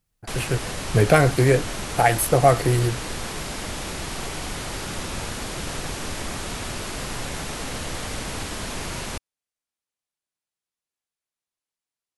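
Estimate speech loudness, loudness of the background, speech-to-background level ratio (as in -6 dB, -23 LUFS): -20.0 LUFS, -30.5 LUFS, 10.5 dB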